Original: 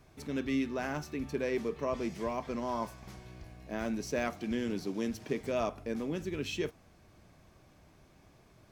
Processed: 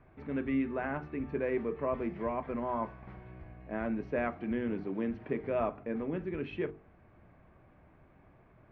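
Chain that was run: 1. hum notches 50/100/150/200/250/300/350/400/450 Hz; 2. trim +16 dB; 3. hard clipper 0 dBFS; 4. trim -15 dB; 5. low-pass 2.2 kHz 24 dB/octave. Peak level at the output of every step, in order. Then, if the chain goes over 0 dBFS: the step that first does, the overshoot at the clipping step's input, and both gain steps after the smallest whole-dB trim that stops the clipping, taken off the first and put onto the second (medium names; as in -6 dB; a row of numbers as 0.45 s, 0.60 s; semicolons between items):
-19.0 dBFS, -3.0 dBFS, -3.0 dBFS, -18.0 dBFS, -19.0 dBFS; nothing clips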